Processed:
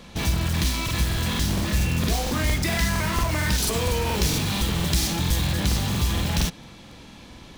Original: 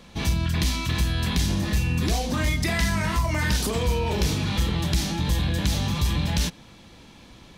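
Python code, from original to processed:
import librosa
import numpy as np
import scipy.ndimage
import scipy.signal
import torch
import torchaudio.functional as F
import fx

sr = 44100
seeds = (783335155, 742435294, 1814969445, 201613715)

p1 = fx.high_shelf(x, sr, hz=5000.0, db=7.0, at=(3.58, 5.5))
p2 = (np.mod(10.0 ** (24.5 / 20.0) * p1 + 1.0, 2.0) - 1.0) / 10.0 ** (24.5 / 20.0)
p3 = p1 + (p2 * 10.0 ** (-5.5 / 20.0))
y = fx.buffer_crackle(p3, sr, first_s=0.84, period_s=0.23, block=2048, kind='repeat')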